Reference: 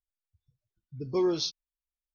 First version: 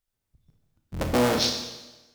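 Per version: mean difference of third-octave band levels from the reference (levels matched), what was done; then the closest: 15.5 dB: cycle switcher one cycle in 3, inverted; compressor, threshold -29 dBFS, peak gain reduction 6.5 dB; Schroeder reverb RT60 1.1 s, combs from 25 ms, DRR 3.5 dB; gain +8.5 dB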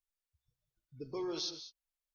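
4.0 dB: limiter -28.5 dBFS, peak gain reduction 9.5 dB; bell 130 Hz -13 dB 2.1 oct; non-linear reverb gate 0.22 s rising, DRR 10 dB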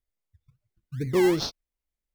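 7.5 dB: low shelf 370 Hz +7 dB; in parallel at -5.5 dB: decimation with a swept rate 29×, swing 60% 2.6 Hz; on the sum: bell 2100 Hz +7 dB 0.27 oct; gain -1 dB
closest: second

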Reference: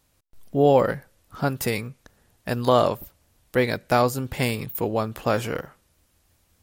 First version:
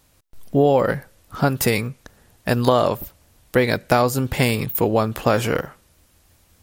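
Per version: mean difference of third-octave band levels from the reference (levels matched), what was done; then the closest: 2.5 dB: compressor 5:1, threshold -20 dBFS, peak gain reduction 7.5 dB; gain +7.5 dB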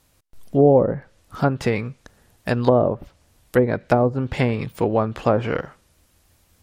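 6.0 dB: treble ducked by the level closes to 560 Hz, closed at -16 dBFS; gain +5 dB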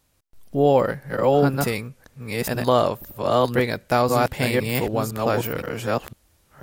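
4.5 dB: reverse delay 0.511 s, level -1 dB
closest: first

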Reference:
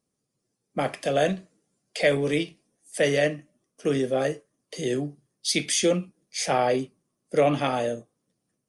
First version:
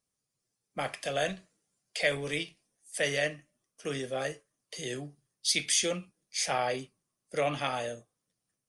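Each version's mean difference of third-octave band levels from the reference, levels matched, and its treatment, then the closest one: 3.5 dB: bell 280 Hz -11.5 dB 2.7 oct; gain -1.5 dB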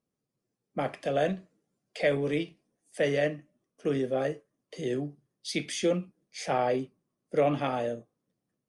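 2.0 dB: high shelf 4500 Hz -12 dB; gain -4 dB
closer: second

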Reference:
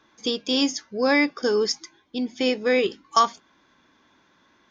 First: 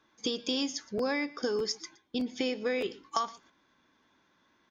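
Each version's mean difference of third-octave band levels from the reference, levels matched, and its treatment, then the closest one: 4.0 dB: gate -48 dBFS, range -8 dB; compressor 5:1, threshold -29 dBFS, peak gain reduction 14 dB; on a send: echo 0.118 s -20.5 dB; on the sum: crackling interface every 0.61 s, samples 512, repeat, from 0.97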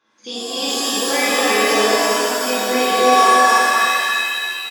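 16.5 dB: reverse delay 0.239 s, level -1.5 dB; HPF 300 Hz 6 dB/oct; echo 0.316 s -3.5 dB; shimmer reverb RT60 2.1 s, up +7 st, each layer -2 dB, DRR -9.5 dB; gain -8.5 dB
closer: first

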